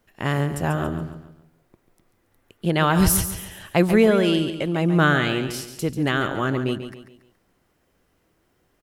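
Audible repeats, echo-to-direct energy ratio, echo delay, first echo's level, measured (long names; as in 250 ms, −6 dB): 4, −9.5 dB, 140 ms, −10.0 dB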